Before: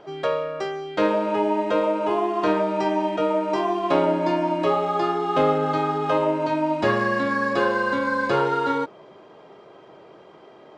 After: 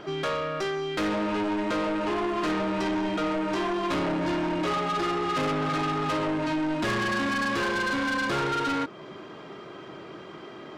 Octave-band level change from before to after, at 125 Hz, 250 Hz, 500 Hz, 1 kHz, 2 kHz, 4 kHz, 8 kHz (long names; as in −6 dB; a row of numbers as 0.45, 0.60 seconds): −1.5 dB, −2.0 dB, −8.0 dB, −6.0 dB, −1.5 dB, +2.5 dB, can't be measured